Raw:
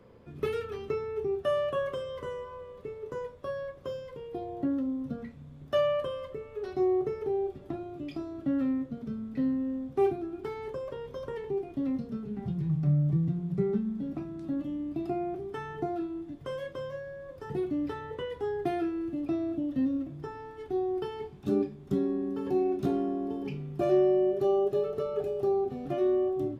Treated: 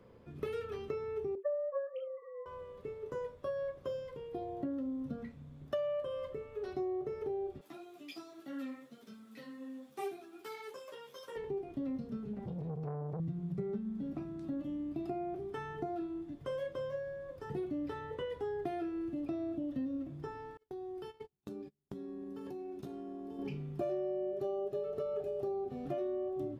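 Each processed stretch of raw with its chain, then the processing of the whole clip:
1.35–2.46 sine-wave speech + doubler 26 ms -12.5 dB
7.61–11.36 HPF 160 Hz + tilt +4.5 dB/oct + ensemble effect
12.33–13.2 compressor 1.5:1, threshold -33 dBFS + core saturation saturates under 480 Hz
20.57–23.39 gate -37 dBFS, range -37 dB + high shelf 4100 Hz +8 dB + compressor 10:1, threshold -37 dBFS
whole clip: dynamic EQ 590 Hz, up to +7 dB, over -45 dBFS, Q 3.6; compressor 5:1, threshold -31 dBFS; gain -3.5 dB

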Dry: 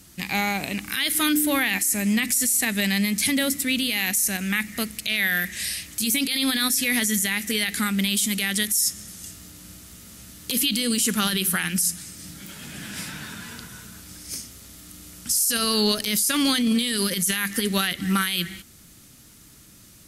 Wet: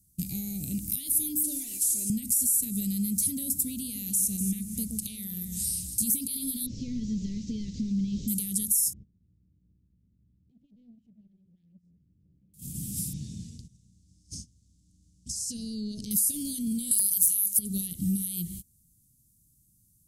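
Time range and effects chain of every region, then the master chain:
1.43–2.1 CVSD 64 kbps + tone controls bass -14 dB, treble +6 dB + comb 3 ms, depth 77%
3.83–6.03 LPF 11000 Hz + echo with dull and thin repeats by turns 0.121 s, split 1200 Hz, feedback 52%, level -6 dB
6.66–8.28 delta modulation 32 kbps, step -34.5 dBFS + brick-wall FIR band-stop 600–1200 Hz
8.93–12.54 LPF 1900 Hz 24 dB/oct + compressor 5:1, threshold -36 dBFS + core saturation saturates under 910 Hz
13.13–16.11 LPF 6300 Hz 24 dB/oct + dynamic EQ 300 Hz, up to +6 dB, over -36 dBFS, Q 0.71 + compressor, threshold -27 dBFS
16.91–17.59 HPF 63 Hz + tilt +4.5 dB/oct + wrapped overs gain -1.5 dB
whole clip: gate -38 dBFS, range -19 dB; compressor, threshold -26 dBFS; Chebyshev band-stop 140–9700 Hz, order 2; gain +6.5 dB

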